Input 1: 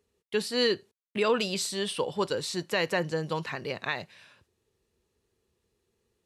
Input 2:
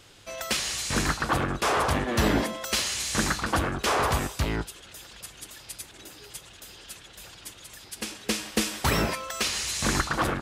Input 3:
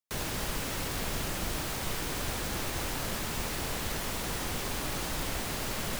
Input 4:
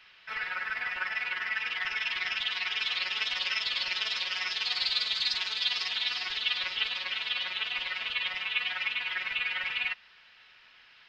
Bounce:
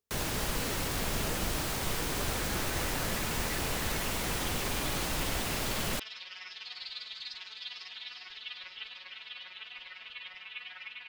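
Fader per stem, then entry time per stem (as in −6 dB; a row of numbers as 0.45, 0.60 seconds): −19.5 dB, muted, +1.0 dB, −13.0 dB; 0.00 s, muted, 0.00 s, 2.00 s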